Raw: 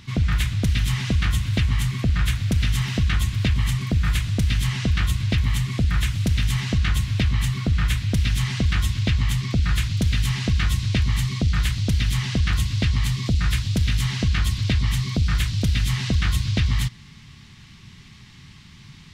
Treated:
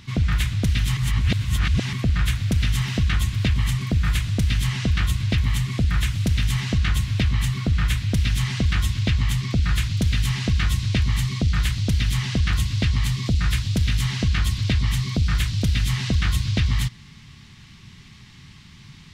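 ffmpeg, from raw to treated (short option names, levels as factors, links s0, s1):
-filter_complex "[0:a]asplit=3[s0][s1][s2];[s0]atrim=end=0.972[s3];[s1]atrim=start=0.968:end=1.932,asetpts=PTS-STARTPTS,areverse[s4];[s2]atrim=start=1.928[s5];[s3][s4]acrossfade=d=0.004:c1=hsin:c2=hsin[s6];[s6][s5]acrossfade=d=0.004:c1=hsin:c2=hsin"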